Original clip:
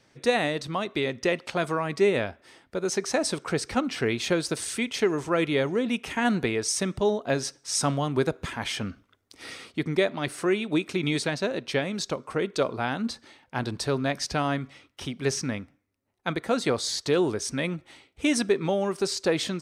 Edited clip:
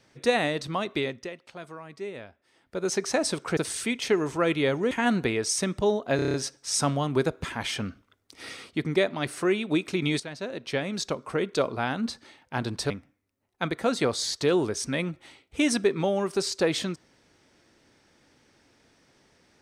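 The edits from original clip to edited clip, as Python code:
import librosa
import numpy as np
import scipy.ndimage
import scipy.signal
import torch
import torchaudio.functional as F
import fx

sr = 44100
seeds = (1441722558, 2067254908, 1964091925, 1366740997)

y = fx.edit(x, sr, fx.fade_down_up(start_s=0.97, length_s=1.88, db=-14.5, fade_s=0.33),
    fx.cut(start_s=3.57, length_s=0.92),
    fx.cut(start_s=5.83, length_s=0.27),
    fx.stutter(start_s=7.35, slice_s=0.03, count=7),
    fx.fade_in_from(start_s=11.21, length_s=0.79, floor_db=-13.0),
    fx.cut(start_s=13.91, length_s=1.64), tone=tone)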